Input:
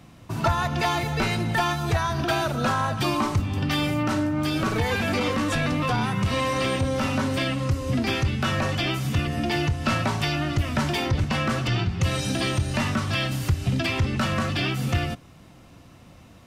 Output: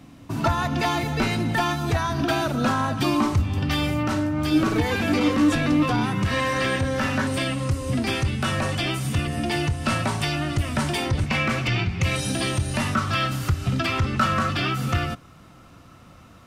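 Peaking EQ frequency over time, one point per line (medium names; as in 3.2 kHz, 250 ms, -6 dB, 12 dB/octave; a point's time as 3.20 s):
peaking EQ +10.5 dB 0.34 oct
270 Hz
from 3.33 s 73 Hz
from 4.51 s 300 Hz
from 6.25 s 1.7 kHz
from 7.27 s 9 kHz
from 11.26 s 2.3 kHz
from 12.16 s 10 kHz
from 12.94 s 1.3 kHz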